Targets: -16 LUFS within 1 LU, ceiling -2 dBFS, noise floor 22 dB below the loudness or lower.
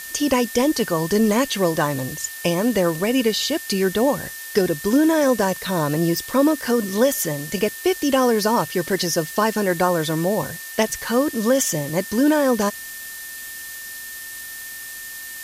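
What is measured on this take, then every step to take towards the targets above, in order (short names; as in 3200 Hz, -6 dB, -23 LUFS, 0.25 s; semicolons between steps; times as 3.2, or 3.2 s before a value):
steady tone 1800 Hz; tone level -36 dBFS; noise floor -35 dBFS; noise floor target -43 dBFS; loudness -20.5 LUFS; peak -5.0 dBFS; loudness target -16.0 LUFS
-> notch 1800 Hz, Q 30; noise print and reduce 8 dB; gain +4.5 dB; limiter -2 dBFS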